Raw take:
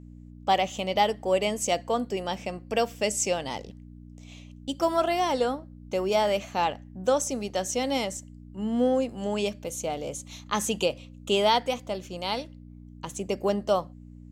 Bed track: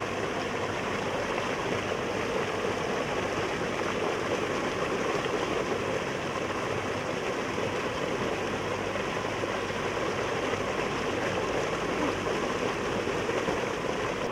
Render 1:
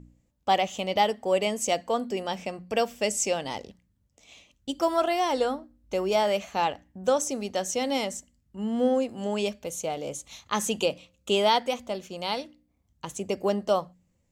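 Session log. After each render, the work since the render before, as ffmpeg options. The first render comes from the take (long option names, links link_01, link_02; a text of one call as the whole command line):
ffmpeg -i in.wav -af "bandreject=frequency=60:width_type=h:width=4,bandreject=frequency=120:width_type=h:width=4,bandreject=frequency=180:width_type=h:width=4,bandreject=frequency=240:width_type=h:width=4,bandreject=frequency=300:width_type=h:width=4" out.wav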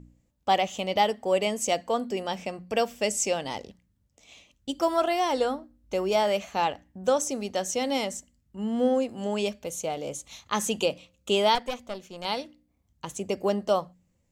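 ffmpeg -i in.wav -filter_complex "[0:a]asettb=1/sr,asplit=3[link_01][link_02][link_03];[link_01]atrim=end=11.554[link_04];[link_02]atrim=start=11.55:end=12.25,asetpts=PTS-STARTPTS,afade=type=in:duration=0.004:curve=qsin,afade=type=out:start_time=0.696:duration=0.004:curve=qsin,aeval=exprs='(tanh(12.6*val(0)+0.75)-tanh(0.75))/12.6':channel_layout=same[link_05];[link_03]atrim=start=12.246[link_06];[link_04][link_05]acrossfade=duration=0.004:curve1=hsin:curve2=qsin[link_07];[link_07][link_06]acrossfade=duration=0.004:curve1=qsin:curve2=hsin" out.wav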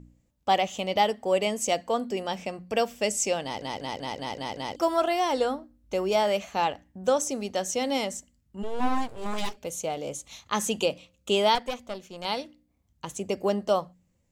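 ffmpeg -i in.wav -filter_complex "[0:a]asplit=3[link_01][link_02][link_03];[link_01]afade=type=out:start_time=8.62:duration=0.02[link_04];[link_02]aeval=exprs='abs(val(0))':channel_layout=same,afade=type=in:start_time=8.62:duration=0.02,afade=type=out:start_time=9.56:duration=0.02[link_05];[link_03]afade=type=in:start_time=9.56:duration=0.02[link_06];[link_04][link_05][link_06]amix=inputs=3:normalize=0,asplit=8[link_07][link_08][link_09][link_10][link_11][link_12][link_13][link_14];[link_07]atrim=end=3.622[link_15];[link_08]atrim=start=3.428:end=3.622[link_16];[link_09]atrim=start=3.428:end=3.622[link_17];[link_10]atrim=start=3.428:end=3.622[link_18];[link_11]atrim=start=3.428:end=3.622[link_19];[link_12]atrim=start=3.428:end=3.622[link_20];[link_13]atrim=start=3.428:end=3.622[link_21];[link_14]atrim=start=4.758[link_22];[link_15][link_16]acrossfade=duration=0.004:curve1=hsin:curve2=hsin[link_23];[link_23][link_17]acrossfade=duration=0.004:curve1=hsin:curve2=hsin[link_24];[link_24][link_18]acrossfade=duration=0.004:curve1=hsin:curve2=hsin[link_25];[link_25][link_19]acrossfade=duration=0.004:curve1=hsin:curve2=hsin[link_26];[link_26][link_20]acrossfade=duration=0.004:curve1=hsin:curve2=hsin[link_27];[link_27][link_21]acrossfade=duration=0.004:curve1=hsin:curve2=hsin[link_28];[link_28][link_22]acrossfade=duration=0.004:curve1=hsin:curve2=hsin" out.wav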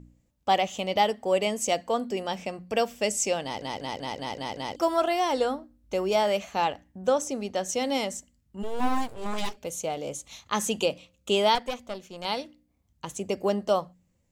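ffmpeg -i in.wav -filter_complex "[0:a]asettb=1/sr,asplit=3[link_01][link_02][link_03];[link_01]atrim=end=7.024[link_04];[link_02]atrim=start=7.02:end=7.69,asetpts=PTS-STARTPTS,afade=type=in:duration=0.004:curve=qsin,afade=type=out:start_time=0.666:duration=0.004:curve=qsin,highshelf=frequency=4200:gain=-5.5[link_05];[link_03]atrim=start=7.686[link_06];[link_04][link_05]acrossfade=duration=0.004:curve1=hsin:curve2=qsin[link_07];[link_07][link_06]acrossfade=duration=0.004:curve1=qsin:curve2=hsin,asettb=1/sr,asplit=3[link_08][link_09][link_10];[link_08]atrim=end=8.604[link_11];[link_09]atrim=start=8.6:end=9.14,asetpts=PTS-STARTPTS,afade=type=in:duration=0.004:curve=qsin,afade=type=out:start_time=0.536:duration=0.004:curve=qsin,highshelf=frequency=10000:gain=11[link_12];[link_10]atrim=start=9.136[link_13];[link_11][link_12]acrossfade=duration=0.004:curve1=hsin:curve2=qsin[link_14];[link_14][link_13]acrossfade=duration=0.004:curve1=qsin:curve2=hsin" out.wav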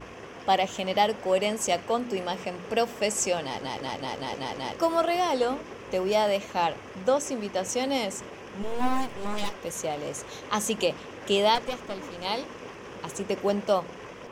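ffmpeg -i in.wav -i bed.wav -filter_complex "[1:a]volume=-12dB[link_01];[0:a][link_01]amix=inputs=2:normalize=0" out.wav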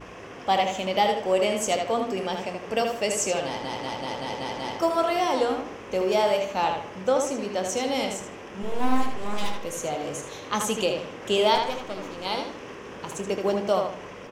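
ffmpeg -i in.wav -filter_complex "[0:a]asplit=2[link_01][link_02];[link_02]adelay=27,volume=-12dB[link_03];[link_01][link_03]amix=inputs=2:normalize=0,asplit=2[link_04][link_05];[link_05]adelay=78,lowpass=frequency=4500:poles=1,volume=-4.5dB,asplit=2[link_06][link_07];[link_07]adelay=78,lowpass=frequency=4500:poles=1,volume=0.36,asplit=2[link_08][link_09];[link_09]adelay=78,lowpass=frequency=4500:poles=1,volume=0.36,asplit=2[link_10][link_11];[link_11]adelay=78,lowpass=frequency=4500:poles=1,volume=0.36,asplit=2[link_12][link_13];[link_13]adelay=78,lowpass=frequency=4500:poles=1,volume=0.36[link_14];[link_06][link_08][link_10][link_12][link_14]amix=inputs=5:normalize=0[link_15];[link_04][link_15]amix=inputs=2:normalize=0" out.wav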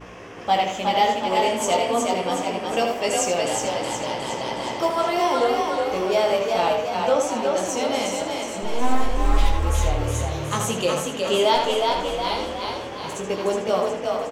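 ffmpeg -i in.wav -filter_complex "[0:a]asplit=2[link_01][link_02];[link_02]adelay=17,volume=-4dB[link_03];[link_01][link_03]amix=inputs=2:normalize=0,asplit=8[link_04][link_05][link_06][link_07][link_08][link_09][link_10][link_11];[link_05]adelay=365,afreqshift=37,volume=-3.5dB[link_12];[link_06]adelay=730,afreqshift=74,volume=-9dB[link_13];[link_07]adelay=1095,afreqshift=111,volume=-14.5dB[link_14];[link_08]adelay=1460,afreqshift=148,volume=-20dB[link_15];[link_09]adelay=1825,afreqshift=185,volume=-25.6dB[link_16];[link_10]adelay=2190,afreqshift=222,volume=-31.1dB[link_17];[link_11]adelay=2555,afreqshift=259,volume=-36.6dB[link_18];[link_04][link_12][link_13][link_14][link_15][link_16][link_17][link_18]amix=inputs=8:normalize=0" out.wav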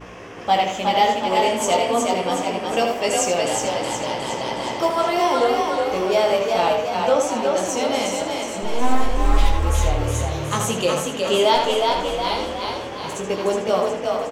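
ffmpeg -i in.wav -af "volume=2dB" out.wav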